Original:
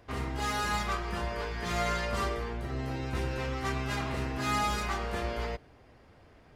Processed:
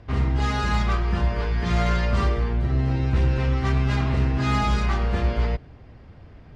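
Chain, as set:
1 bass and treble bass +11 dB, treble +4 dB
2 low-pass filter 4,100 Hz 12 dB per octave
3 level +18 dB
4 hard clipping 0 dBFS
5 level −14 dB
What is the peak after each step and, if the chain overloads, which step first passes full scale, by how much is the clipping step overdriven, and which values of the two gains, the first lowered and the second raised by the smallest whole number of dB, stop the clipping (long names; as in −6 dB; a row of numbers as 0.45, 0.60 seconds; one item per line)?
−13.0, −13.0, +5.0, 0.0, −14.0 dBFS
step 3, 5.0 dB
step 3 +13 dB, step 5 −9 dB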